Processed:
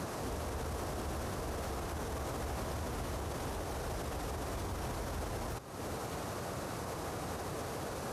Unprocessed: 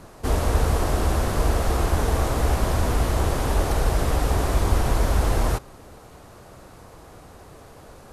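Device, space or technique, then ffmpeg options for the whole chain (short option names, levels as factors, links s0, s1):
broadcast voice chain: -af "highpass=78,deesser=0.6,acompressor=threshold=0.01:ratio=4,equalizer=f=5800:t=o:w=0.31:g=2.5,alimiter=level_in=5.31:limit=0.0631:level=0:latency=1:release=42,volume=0.188,volume=2.51"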